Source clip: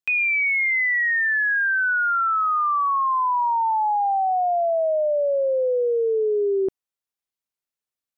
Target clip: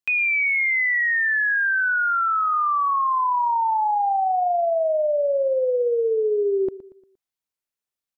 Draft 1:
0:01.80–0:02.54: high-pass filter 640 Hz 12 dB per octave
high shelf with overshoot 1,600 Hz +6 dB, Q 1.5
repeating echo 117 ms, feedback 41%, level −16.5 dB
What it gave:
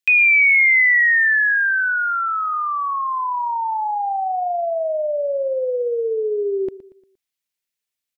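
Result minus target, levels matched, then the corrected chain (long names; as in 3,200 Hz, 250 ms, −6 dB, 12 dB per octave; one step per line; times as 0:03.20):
4,000 Hz band +4.0 dB
0:01.80–0:02.54: high-pass filter 640 Hz 12 dB per octave
repeating echo 117 ms, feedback 41%, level −16.5 dB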